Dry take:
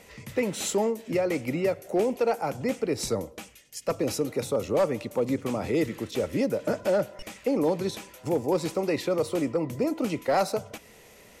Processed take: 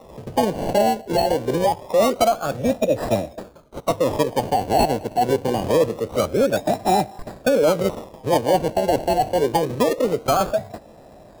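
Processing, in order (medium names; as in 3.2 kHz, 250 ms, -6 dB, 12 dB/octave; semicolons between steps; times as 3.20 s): decimation with a swept rate 28×, swing 60% 0.25 Hz; resonant low shelf 650 Hz +7.5 dB, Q 1.5; formant shift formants +6 st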